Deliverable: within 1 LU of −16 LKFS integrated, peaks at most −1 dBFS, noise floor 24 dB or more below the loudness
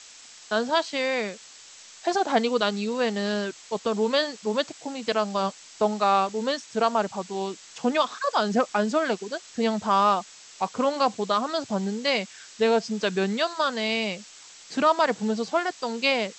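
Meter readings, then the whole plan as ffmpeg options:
background noise floor −48 dBFS; target noise floor −50 dBFS; integrated loudness −25.5 LKFS; sample peak −9.0 dBFS; target loudness −16.0 LKFS
→ -af "afftdn=noise_reduction=6:noise_floor=-48"
-af "volume=9.5dB,alimiter=limit=-1dB:level=0:latency=1"

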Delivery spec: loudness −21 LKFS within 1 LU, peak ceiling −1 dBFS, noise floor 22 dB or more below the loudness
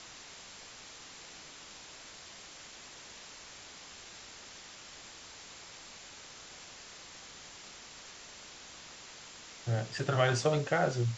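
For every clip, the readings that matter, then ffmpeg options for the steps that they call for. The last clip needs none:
background noise floor −51 dBFS; target noise floor −61 dBFS; integrated loudness −39.0 LKFS; sample peak −15.5 dBFS; target loudness −21.0 LKFS
→ -af "afftdn=noise_reduction=10:noise_floor=-51"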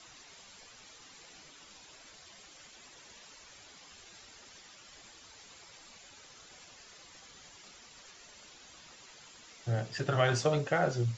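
background noise floor −55 dBFS; integrated loudness −31.0 LKFS; sample peak −15.5 dBFS; target loudness −21.0 LKFS
→ -af "volume=10dB"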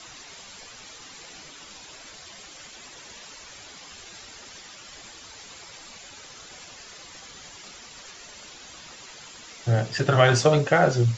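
integrated loudness −21.0 LKFS; sample peak −5.5 dBFS; background noise floor −45 dBFS

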